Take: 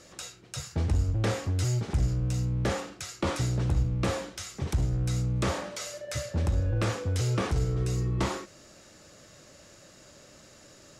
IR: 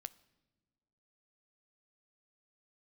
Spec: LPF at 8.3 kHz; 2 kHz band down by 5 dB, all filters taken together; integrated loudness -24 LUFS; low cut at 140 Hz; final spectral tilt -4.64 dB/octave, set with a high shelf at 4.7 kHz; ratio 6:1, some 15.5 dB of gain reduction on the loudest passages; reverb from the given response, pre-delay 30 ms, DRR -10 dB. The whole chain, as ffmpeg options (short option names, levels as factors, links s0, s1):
-filter_complex "[0:a]highpass=140,lowpass=8300,equalizer=f=2000:t=o:g=-7.5,highshelf=f=4700:g=5.5,acompressor=threshold=0.00708:ratio=6,asplit=2[s0][s1];[1:a]atrim=start_sample=2205,adelay=30[s2];[s1][s2]afir=irnorm=-1:irlink=0,volume=5.31[s3];[s0][s3]amix=inputs=2:normalize=0,volume=3.76"